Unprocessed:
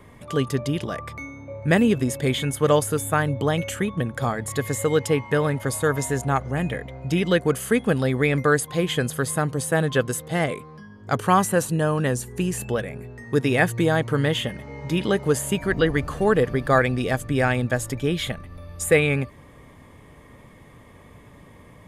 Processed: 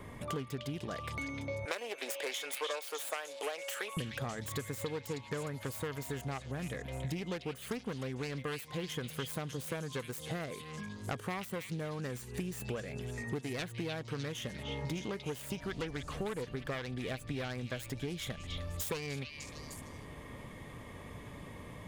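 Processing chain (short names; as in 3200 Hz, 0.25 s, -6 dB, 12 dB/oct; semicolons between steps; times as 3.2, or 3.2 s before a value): self-modulated delay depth 0.25 ms; 1.65–3.97 HPF 500 Hz 24 dB/oct; compressor 12:1, threshold -35 dBFS, peak gain reduction 22.5 dB; delay with a stepping band-pass 0.303 s, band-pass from 3200 Hz, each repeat 0.7 oct, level -1 dB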